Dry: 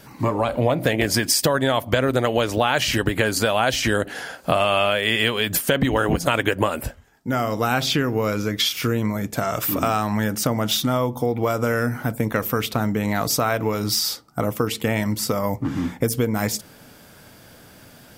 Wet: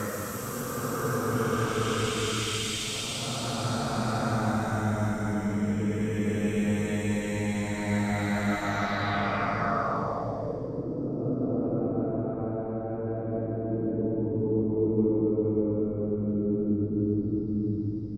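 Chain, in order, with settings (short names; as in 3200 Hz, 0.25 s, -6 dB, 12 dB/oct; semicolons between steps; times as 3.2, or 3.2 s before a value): Paulstretch 12×, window 0.25 s, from 12.43; low-pass sweep 7900 Hz -> 350 Hz, 8.58–10.89; frequency-shifting echo 0.211 s, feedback 65%, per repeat -49 Hz, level -17.5 dB; gain -6 dB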